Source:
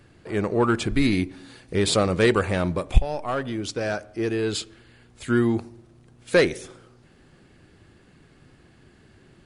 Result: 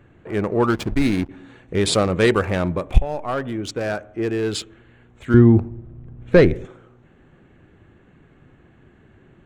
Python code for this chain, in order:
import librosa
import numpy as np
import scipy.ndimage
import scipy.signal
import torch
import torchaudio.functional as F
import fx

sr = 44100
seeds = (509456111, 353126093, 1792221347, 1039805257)

y = fx.wiener(x, sr, points=9)
y = fx.backlash(y, sr, play_db=-26.0, at=(0.7, 1.29))
y = fx.riaa(y, sr, side='playback', at=(5.34, 6.65))
y = y * librosa.db_to_amplitude(2.5)